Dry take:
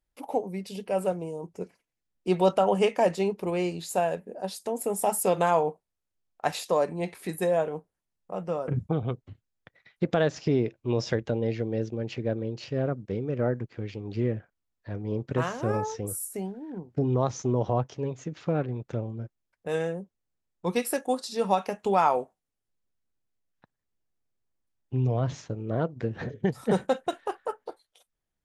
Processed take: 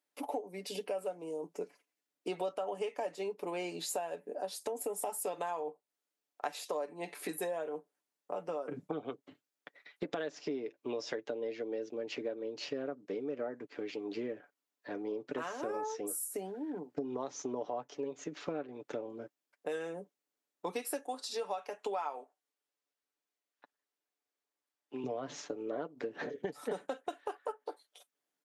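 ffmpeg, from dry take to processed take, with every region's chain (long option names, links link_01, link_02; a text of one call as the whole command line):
ffmpeg -i in.wav -filter_complex "[0:a]asettb=1/sr,asplit=3[link_01][link_02][link_03];[link_01]atrim=end=21.064[link_04];[link_02]atrim=start=21.06:end=25.04,asetpts=PTS-STARTPTS,afade=type=in:duration=0.004:curve=qsin,afade=type=out:start_time=3.976:duration=0.004:curve=qsin,highpass=frequency=490:poles=1,highshelf=frequency=8300:gain=-6.5[link_05];[link_03]atrim=start=25.036[link_06];[link_04][link_05]acrossfade=duration=0.004:curve1=hsin:curve2=qsin[link_07];[link_07][link_06]acrossfade=duration=0.004:curve1=qsin:curve2=hsin,highpass=frequency=260:width=0.5412,highpass=frequency=260:width=1.3066,aecho=1:1:6.9:0.48,acompressor=threshold=-36dB:ratio=6,volume=1dB" out.wav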